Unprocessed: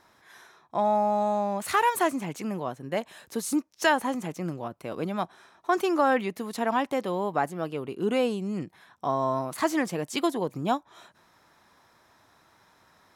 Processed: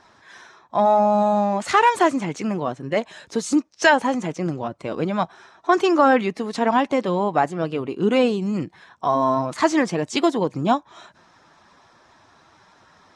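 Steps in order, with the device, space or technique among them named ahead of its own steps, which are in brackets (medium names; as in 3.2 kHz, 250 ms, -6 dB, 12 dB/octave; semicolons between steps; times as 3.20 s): clip after many re-uploads (low-pass 7.5 kHz 24 dB/octave; coarse spectral quantiser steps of 15 dB); trim +7.5 dB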